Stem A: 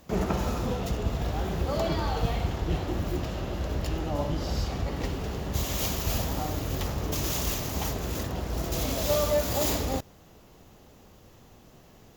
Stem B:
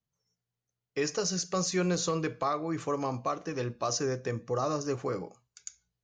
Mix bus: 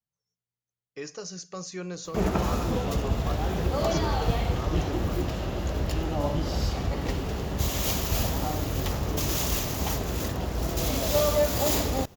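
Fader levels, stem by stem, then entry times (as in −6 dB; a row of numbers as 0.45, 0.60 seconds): +2.0, −7.5 decibels; 2.05, 0.00 seconds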